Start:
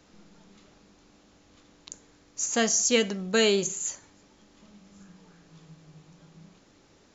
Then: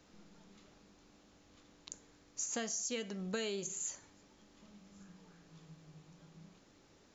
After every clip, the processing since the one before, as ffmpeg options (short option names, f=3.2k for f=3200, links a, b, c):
-af "acompressor=threshold=-30dB:ratio=10,volume=-5.5dB"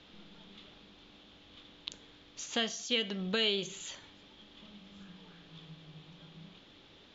-af "lowpass=f=3.4k:t=q:w=5.1,volume=4.5dB"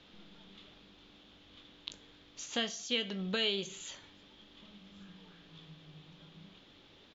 -filter_complex "[0:a]asplit=2[a][b];[b]adelay=21,volume=-13dB[c];[a][c]amix=inputs=2:normalize=0,volume=-2dB"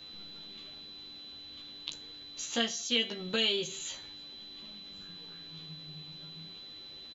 -filter_complex "[0:a]aeval=exprs='val(0)+0.00224*sin(2*PI*4000*n/s)':c=same,asplit=2[a][b];[b]adelay=13,volume=-2dB[c];[a][c]amix=inputs=2:normalize=0,crystalizer=i=1:c=0"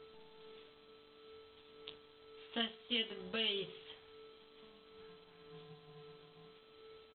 -af "aeval=exprs='val(0)+0.00708*sin(2*PI*440*n/s)':c=same,aphaser=in_gain=1:out_gain=1:delay=4.1:decay=0.22:speed=0.54:type=triangular,aresample=8000,aeval=exprs='sgn(val(0))*max(abs(val(0))-0.00398,0)':c=same,aresample=44100,volume=-6.5dB"